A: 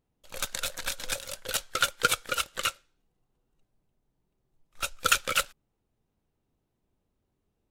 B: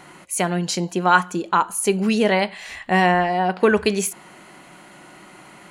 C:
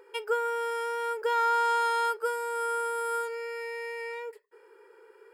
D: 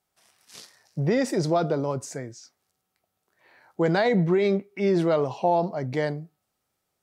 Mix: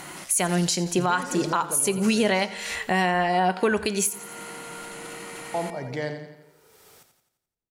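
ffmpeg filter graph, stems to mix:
-filter_complex "[0:a]acompressor=threshold=-29dB:ratio=6,volume=-17dB,asplit=2[a][b];[b]volume=-5dB[c];[1:a]highshelf=f=4.5k:g=10,volume=3dB,asplit=2[d][e];[e]volume=-19dB[f];[2:a]acompressor=threshold=-34dB:ratio=6,adelay=1650,volume=-5.5dB[g];[3:a]acontrast=83,tiltshelf=f=970:g=-3,acompressor=mode=upward:threshold=-22dB:ratio=2.5,volume=-10dB,asplit=3[h][i][j];[h]atrim=end=3.02,asetpts=PTS-STARTPTS,afade=t=out:st=3.016:d=0.004:c=hsin[k];[i]atrim=start=3.02:end=5.54,asetpts=PTS-STARTPTS,volume=0[l];[j]atrim=start=5.54,asetpts=PTS-STARTPTS,afade=t=in:d=0.004:c=hsin[m];[k][l][m]concat=n=3:v=0:a=1,asplit=2[n][o];[o]volume=-8.5dB[p];[c][f][p]amix=inputs=3:normalize=0,aecho=0:1:86|172|258|344|430|516|602:1|0.51|0.26|0.133|0.0677|0.0345|0.0176[q];[a][d][g][n][q]amix=inputs=5:normalize=0,alimiter=limit=-12.5dB:level=0:latency=1:release=370"

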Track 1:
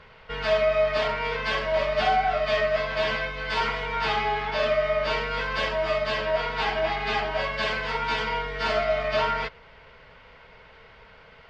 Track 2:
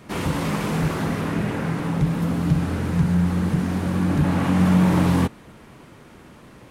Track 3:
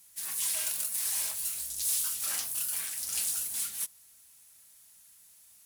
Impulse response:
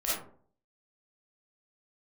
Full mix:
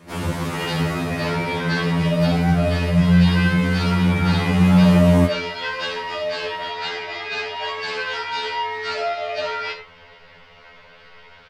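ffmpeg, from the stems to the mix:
-filter_complex "[0:a]highshelf=f=3k:g=8.5,acompressor=threshold=-24dB:ratio=6,adelay=250,volume=1.5dB,asplit=2[a][b];[b]volume=-11dB[c];[1:a]volume=0.5dB,asplit=2[d][e];[e]volume=-16.5dB[f];[2:a]lowpass=5.5k,adelay=100,volume=-13dB[g];[3:a]atrim=start_sample=2205[h];[c][f]amix=inputs=2:normalize=0[i];[i][h]afir=irnorm=-1:irlink=0[j];[a][d][g][j]amix=inputs=4:normalize=0,afftfilt=real='re*2*eq(mod(b,4),0)':imag='im*2*eq(mod(b,4),0)':win_size=2048:overlap=0.75"

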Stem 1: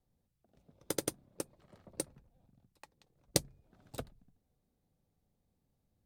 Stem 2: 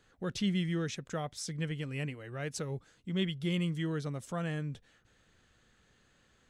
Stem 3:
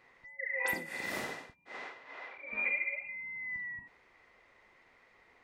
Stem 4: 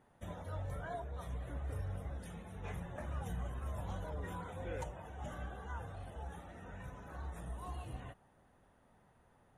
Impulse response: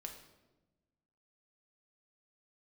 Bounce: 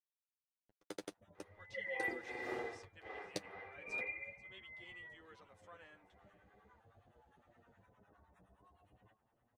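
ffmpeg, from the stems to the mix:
-filter_complex "[0:a]highpass=190,equalizer=f=3.2k:w=0.46:g=5.5,acrusher=bits=8:mix=0:aa=0.000001,volume=-7dB[a];[1:a]highpass=850,adelay=1350,volume=-10dB,asplit=2[b][c];[c]volume=-17.5dB[d];[2:a]equalizer=f=490:t=o:w=1.4:g=9,aecho=1:1:2.5:0.55,adelay=1350,volume=-5dB,afade=t=out:st=3.79:d=0.55:silence=0.446684[e];[3:a]lowshelf=f=110:g=-11,acompressor=threshold=-54dB:ratio=6,acrossover=split=800[f][g];[f]aeval=exprs='val(0)*(1-1/2+1/2*cos(2*PI*9.7*n/s))':c=same[h];[g]aeval=exprs='val(0)*(1-1/2-1/2*cos(2*PI*9.7*n/s))':c=same[i];[h][i]amix=inputs=2:normalize=0,adelay=1000,volume=-2dB,asplit=2[j][k];[k]volume=-16.5dB[l];[d][l]amix=inputs=2:normalize=0,aecho=0:1:485:1[m];[a][b][e][j][m]amix=inputs=5:normalize=0,aemphasis=mode=reproduction:type=75kf,flanger=delay=8.2:depth=2:regen=17:speed=0.41:shape=sinusoidal"

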